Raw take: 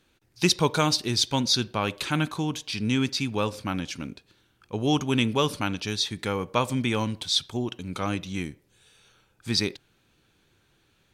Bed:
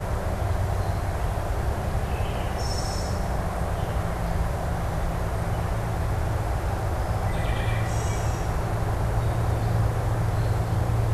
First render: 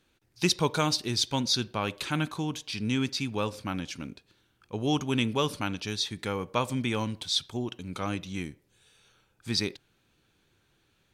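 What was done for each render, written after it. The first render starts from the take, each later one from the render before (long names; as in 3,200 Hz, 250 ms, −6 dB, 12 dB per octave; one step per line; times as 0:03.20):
level −3.5 dB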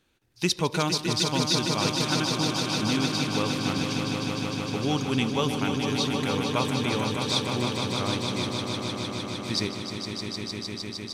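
echo that builds up and dies away 153 ms, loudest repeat 5, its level −7.5 dB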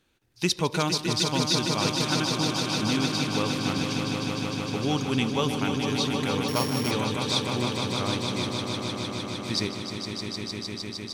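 0:06.48–0:06.91: samples sorted by size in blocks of 8 samples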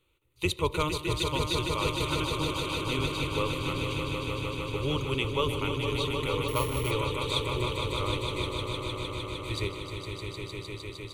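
sub-octave generator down 1 octave, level −3 dB
phaser with its sweep stopped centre 1,100 Hz, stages 8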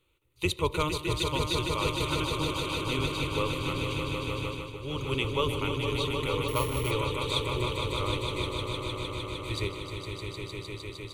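0:04.46–0:05.12: duck −8.5 dB, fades 0.28 s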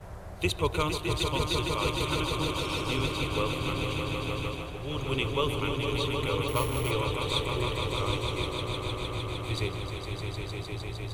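mix in bed −15.5 dB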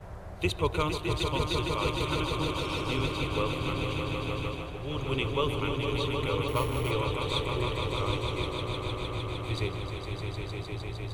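high-shelf EQ 5,100 Hz −7 dB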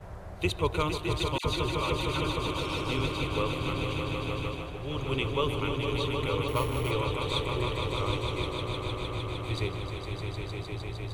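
0:01.38–0:02.47: all-pass dispersion lows, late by 65 ms, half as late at 1,700 Hz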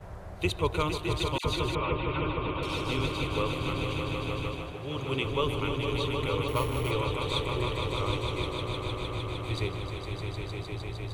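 0:01.75–0:02.63: inverse Chebyshev low-pass filter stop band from 5,600 Hz
0:04.72–0:05.27: high-pass filter 94 Hz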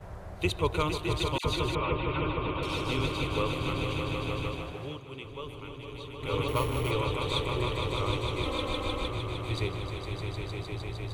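0:04.84–0:06.35: duck −12 dB, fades 0.16 s
0:08.45–0:09.08: comb filter 3.8 ms, depth 96%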